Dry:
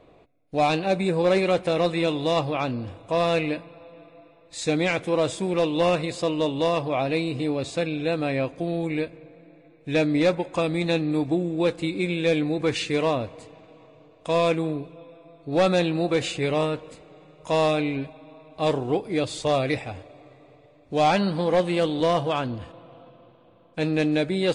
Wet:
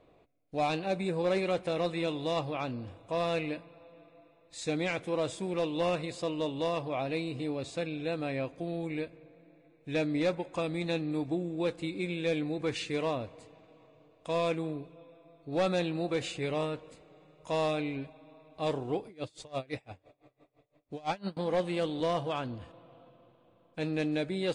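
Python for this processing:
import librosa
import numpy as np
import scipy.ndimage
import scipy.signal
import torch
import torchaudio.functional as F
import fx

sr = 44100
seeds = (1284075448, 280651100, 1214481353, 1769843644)

y = fx.tremolo_db(x, sr, hz=5.9, depth_db=26, at=(19.07, 21.37))
y = y * 10.0 ** (-8.5 / 20.0)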